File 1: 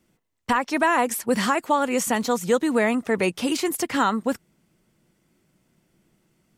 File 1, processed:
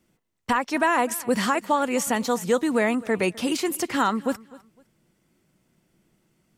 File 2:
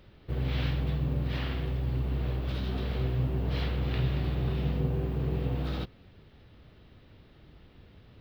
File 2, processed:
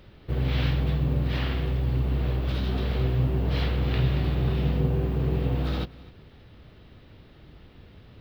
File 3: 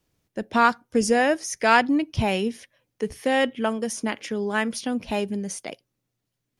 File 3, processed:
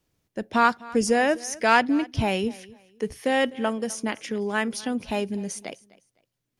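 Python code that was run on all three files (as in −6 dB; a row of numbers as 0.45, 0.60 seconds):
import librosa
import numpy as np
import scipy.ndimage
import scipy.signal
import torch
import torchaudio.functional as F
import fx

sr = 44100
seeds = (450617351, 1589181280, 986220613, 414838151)

y = fx.echo_feedback(x, sr, ms=254, feedback_pct=27, wet_db=-21)
y = y * 10.0 ** (-26 / 20.0) / np.sqrt(np.mean(np.square(y)))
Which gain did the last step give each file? −1.0, +4.5, −1.0 decibels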